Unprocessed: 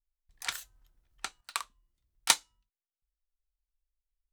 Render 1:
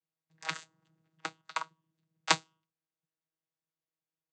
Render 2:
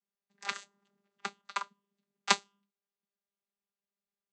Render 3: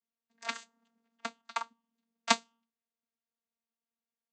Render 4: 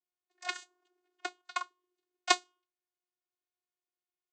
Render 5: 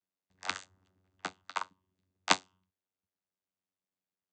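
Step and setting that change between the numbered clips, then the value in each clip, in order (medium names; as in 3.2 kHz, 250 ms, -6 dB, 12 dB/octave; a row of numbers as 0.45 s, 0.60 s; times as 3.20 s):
vocoder, frequency: 160 Hz, 200 Hz, 230 Hz, 360 Hz, 93 Hz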